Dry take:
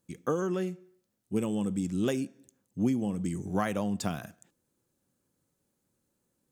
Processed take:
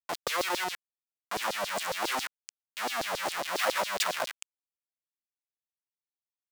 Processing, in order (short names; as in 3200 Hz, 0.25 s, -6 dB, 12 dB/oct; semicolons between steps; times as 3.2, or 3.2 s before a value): Schmitt trigger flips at -44 dBFS; LFO high-pass saw down 7.3 Hz 480–5100 Hz; gain +6.5 dB